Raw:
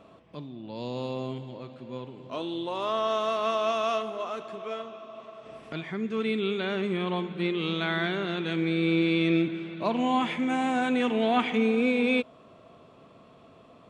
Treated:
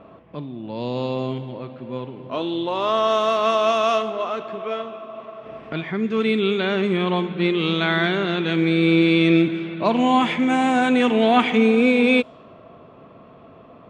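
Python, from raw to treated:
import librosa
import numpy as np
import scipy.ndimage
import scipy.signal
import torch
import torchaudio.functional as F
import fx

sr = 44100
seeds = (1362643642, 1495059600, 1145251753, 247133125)

y = fx.env_lowpass(x, sr, base_hz=2100.0, full_db=-21.0)
y = y * librosa.db_to_amplitude(8.0)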